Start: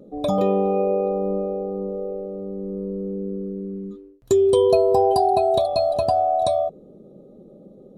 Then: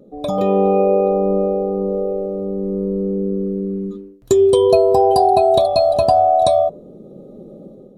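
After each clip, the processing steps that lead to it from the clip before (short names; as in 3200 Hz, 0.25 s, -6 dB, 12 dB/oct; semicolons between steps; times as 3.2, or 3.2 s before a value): de-hum 99.06 Hz, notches 21; AGC gain up to 9 dB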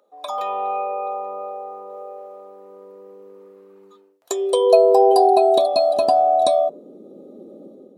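low shelf 440 Hz -9 dB; high-pass sweep 1000 Hz -> 270 Hz, 3.66–5.77; gain -1.5 dB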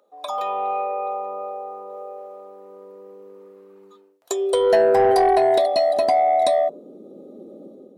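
soft clip -10 dBFS, distortion -15 dB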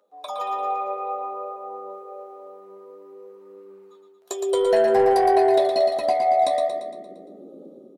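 flange 0.55 Hz, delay 9.7 ms, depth 5.6 ms, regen +38%; on a send: feedback echo 0.115 s, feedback 54%, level -6 dB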